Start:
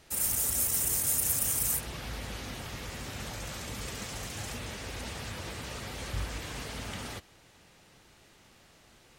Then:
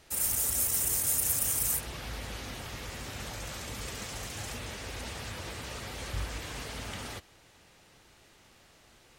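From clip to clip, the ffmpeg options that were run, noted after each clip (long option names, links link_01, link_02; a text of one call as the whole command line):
ffmpeg -i in.wav -af "equalizer=frequency=180:width=1.2:gain=-3" out.wav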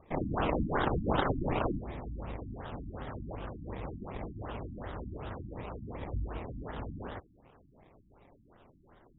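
ffmpeg -i in.wav -af "acrusher=samples=24:mix=1:aa=0.000001:lfo=1:lforange=14.4:lforate=2.2,afftfilt=real='re*lt(b*sr/1024,300*pow(3900/300,0.5+0.5*sin(2*PI*2.7*pts/sr)))':imag='im*lt(b*sr/1024,300*pow(3900/300,0.5+0.5*sin(2*PI*2.7*pts/sr)))':win_size=1024:overlap=0.75" out.wav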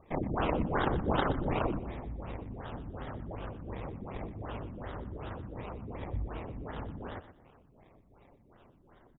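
ffmpeg -i in.wav -af "aecho=1:1:122|244|366:0.237|0.0593|0.0148" out.wav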